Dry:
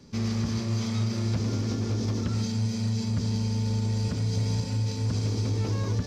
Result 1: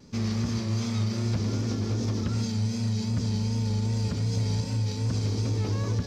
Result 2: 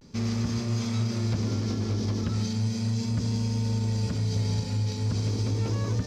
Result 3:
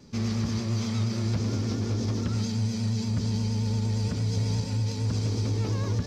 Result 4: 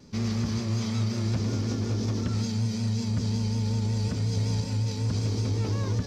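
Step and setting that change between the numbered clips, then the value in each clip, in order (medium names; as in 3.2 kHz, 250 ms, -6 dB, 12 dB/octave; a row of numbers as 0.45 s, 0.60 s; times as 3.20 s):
vibrato, rate: 2.6 Hz, 0.37 Hz, 8.6 Hz, 5.4 Hz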